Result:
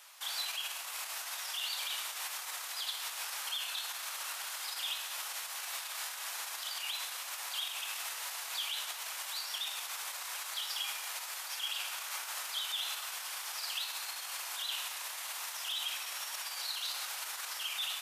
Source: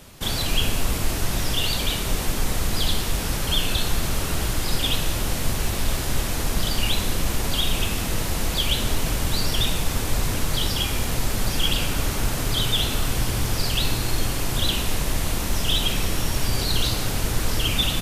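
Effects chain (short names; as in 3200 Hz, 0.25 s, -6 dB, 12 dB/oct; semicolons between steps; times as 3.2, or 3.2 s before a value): limiter -19 dBFS, peak gain reduction 11 dB; HPF 860 Hz 24 dB/oct; on a send: reverb RT60 0.35 s, pre-delay 5 ms, DRR 11 dB; on the sum: gain -6 dB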